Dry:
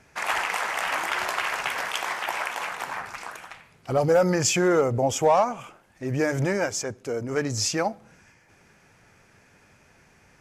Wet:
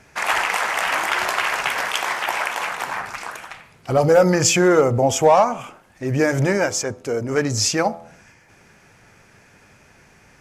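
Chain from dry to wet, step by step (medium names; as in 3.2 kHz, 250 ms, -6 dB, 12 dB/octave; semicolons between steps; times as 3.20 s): de-hum 83.77 Hz, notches 16; trim +6 dB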